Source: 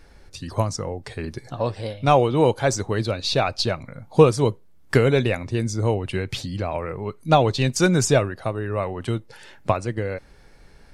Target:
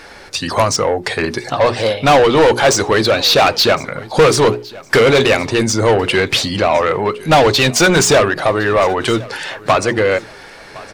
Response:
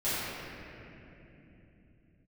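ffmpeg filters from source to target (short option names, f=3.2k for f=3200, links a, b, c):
-filter_complex "[0:a]bandreject=f=60:t=h:w=6,bandreject=f=120:t=h:w=6,bandreject=f=180:t=h:w=6,bandreject=f=240:t=h:w=6,bandreject=f=300:t=h:w=6,bandreject=f=360:t=h:w=6,bandreject=f=420:t=h:w=6,asplit=2[a][b];[b]highpass=f=720:p=1,volume=28dB,asoftclip=type=tanh:threshold=-2dB[c];[a][c]amix=inputs=2:normalize=0,lowpass=f=4.7k:p=1,volume=-6dB,asplit=2[d][e];[e]aecho=0:1:1061|2122:0.0891|0.025[f];[d][f]amix=inputs=2:normalize=0"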